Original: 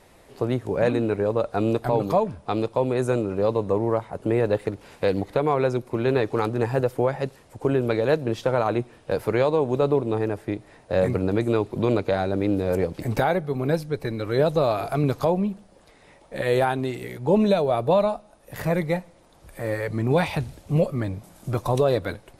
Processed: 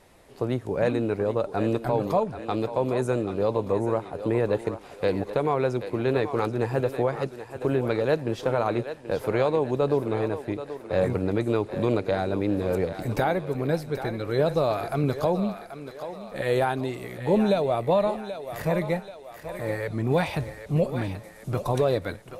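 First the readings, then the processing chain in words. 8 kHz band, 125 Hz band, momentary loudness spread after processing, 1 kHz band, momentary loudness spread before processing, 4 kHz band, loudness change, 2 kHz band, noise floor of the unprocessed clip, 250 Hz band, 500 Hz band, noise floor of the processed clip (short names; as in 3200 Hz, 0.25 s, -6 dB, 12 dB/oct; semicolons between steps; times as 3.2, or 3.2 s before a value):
n/a, -2.5 dB, 9 LU, -2.0 dB, 8 LU, -2.0 dB, -2.5 dB, -2.0 dB, -54 dBFS, -2.5 dB, -2.0 dB, -45 dBFS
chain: thinning echo 0.782 s, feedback 51%, high-pass 400 Hz, level -9.5 dB; gain -2.5 dB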